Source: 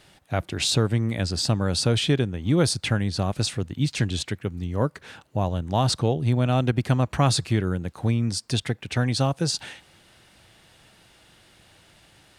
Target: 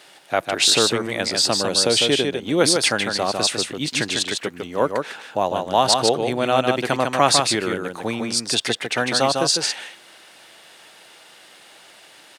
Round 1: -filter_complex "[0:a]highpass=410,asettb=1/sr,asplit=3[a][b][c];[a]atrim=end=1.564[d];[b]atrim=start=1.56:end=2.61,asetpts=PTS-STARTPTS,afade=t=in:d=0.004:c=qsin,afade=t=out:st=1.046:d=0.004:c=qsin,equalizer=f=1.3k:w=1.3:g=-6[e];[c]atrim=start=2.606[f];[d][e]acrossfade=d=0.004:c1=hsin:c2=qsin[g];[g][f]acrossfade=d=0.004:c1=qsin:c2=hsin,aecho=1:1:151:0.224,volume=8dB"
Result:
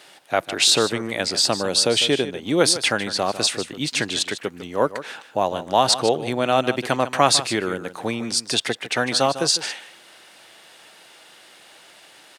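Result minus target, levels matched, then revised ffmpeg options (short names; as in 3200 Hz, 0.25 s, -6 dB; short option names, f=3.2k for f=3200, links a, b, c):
echo-to-direct -8.5 dB
-filter_complex "[0:a]highpass=410,asettb=1/sr,asplit=3[a][b][c];[a]atrim=end=1.564[d];[b]atrim=start=1.56:end=2.61,asetpts=PTS-STARTPTS,afade=t=in:d=0.004:c=qsin,afade=t=out:st=1.046:d=0.004:c=qsin,equalizer=f=1.3k:w=1.3:g=-6[e];[c]atrim=start=2.606[f];[d][e]acrossfade=d=0.004:c1=hsin:c2=qsin[g];[g][f]acrossfade=d=0.004:c1=qsin:c2=hsin,aecho=1:1:151:0.596,volume=8dB"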